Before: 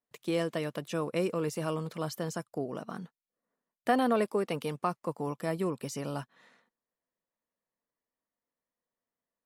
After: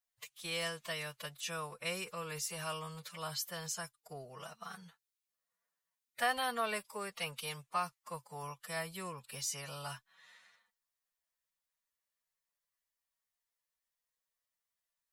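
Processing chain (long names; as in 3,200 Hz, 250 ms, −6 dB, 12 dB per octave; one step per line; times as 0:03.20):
guitar amp tone stack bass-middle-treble 10-0-10
phase-vocoder stretch with locked phases 1.6×
level +5.5 dB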